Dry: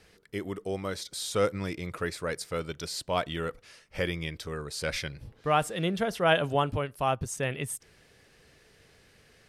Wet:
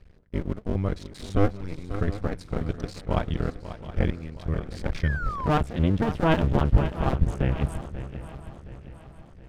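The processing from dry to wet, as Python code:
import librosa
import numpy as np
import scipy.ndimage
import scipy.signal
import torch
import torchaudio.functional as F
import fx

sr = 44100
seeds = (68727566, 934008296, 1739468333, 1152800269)

p1 = fx.cycle_switch(x, sr, every=2, mode='muted')
p2 = p1 + fx.echo_swing(p1, sr, ms=719, ratio=3, feedback_pct=49, wet_db=-12.0, dry=0)
p3 = fx.spec_paint(p2, sr, seeds[0], shape='fall', start_s=5.03, length_s=0.45, low_hz=950.0, high_hz=1900.0, level_db=-33.0)
p4 = fx.low_shelf(p3, sr, hz=120.0, db=4.0)
p5 = np.where(np.abs(p4) >= 10.0 ** (-35.0 / 20.0), p4, 0.0)
p6 = p4 + F.gain(torch.from_numpy(p5), -9.5).numpy()
p7 = fx.riaa(p6, sr, side='playback')
y = F.gain(torch.from_numpy(p7), -2.0).numpy()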